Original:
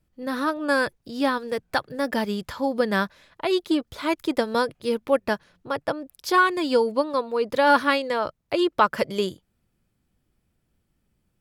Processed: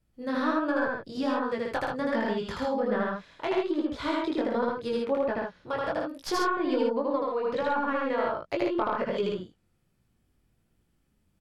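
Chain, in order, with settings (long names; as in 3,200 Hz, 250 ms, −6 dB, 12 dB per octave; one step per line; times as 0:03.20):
stylus tracing distortion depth 0.052 ms
treble cut that deepens with the level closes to 1,400 Hz, closed at −18.5 dBFS
downward compressor 6 to 1, threshold −23 dBFS, peak gain reduction 10 dB
chorus effect 1.3 Hz, delay 16.5 ms, depth 7 ms
loudspeakers that aren't time-aligned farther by 27 metres −1 dB, 46 metres −4 dB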